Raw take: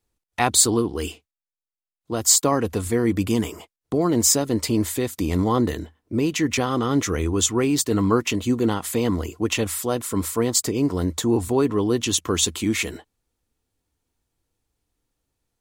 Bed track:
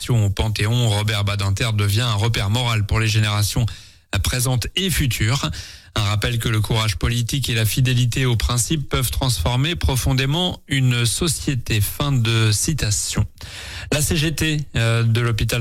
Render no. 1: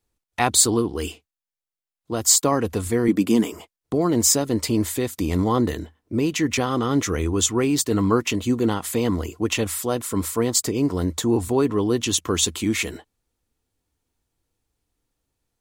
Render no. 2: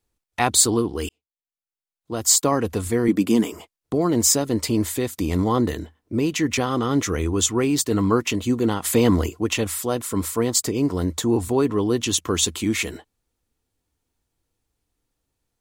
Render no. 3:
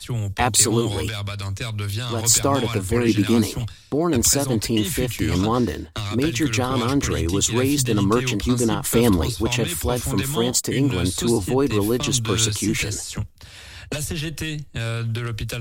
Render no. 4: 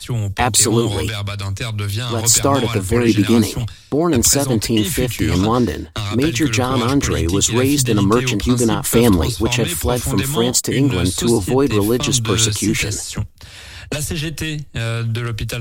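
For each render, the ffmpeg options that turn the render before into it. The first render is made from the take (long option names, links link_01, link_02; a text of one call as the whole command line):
ffmpeg -i in.wav -filter_complex "[0:a]asettb=1/sr,asplit=3[link_01][link_02][link_03];[link_01]atrim=end=3.084[link_04];[link_02]atrim=start=3.08:end=3.52,asetpts=PTS-STARTPTS,afade=type=in:duration=0.004:curve=qsin,afade=type=out:start_time=0.436:duration=0.004:curve=qsin,highpass=frequency=230:width_type=q:width=1.7[link_05];[link_03]atrim=start=3.516[link_06];[link_04][link_05]acrossfade=duration=0.004:curve1=hsin:curve2=qsin[link_07];[link_07][link_06]acrossfade=duration=0.004:curve1=qsin:curve2=hsin" out.wav
ffmpeg -i in.wav -filter_complex "[0:a]asplit=3[link_01][link_02][link_03];[link_01]afade=type=out:start_time=8.84:duration=0.02[link_04];[link_02]acontrast=37,afade=type=in:start_time=8.84:duration=0.02,afade=type=out:start_time=9.28:duration=0.02[link_05];[link_03]afade=type=in:start_time=9.28:duration=0.02[link_06];[link_04][link_05][link_06]amix=inputs=3:normalize=0,asplit=2[link_07][link_08];[link_07]atrim=end=1.09,asetpts=PTS-STARTPTS,afade=type=out:start_time=1.086:duration=0.004:curve=hsin[link_09];[link_08]atrim=start=1.09,asetpts=PTS-STARTPTS,afade=type=in:duration=1.31[link_10];[link_09][link_10]concat=n=2:v=0:a=1" out.wav
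ffmpeg -i in.wav -i bed.wav -filter_complex "[1:a]volume=-8dB[link_01];[0:a][link_01]amix=inputs=2:normalize=0" out.wav
ffmpeg -i in.wav -af "volume=4.5dB,alimiter=limit=-1dB:level=0:latency=1" out.wav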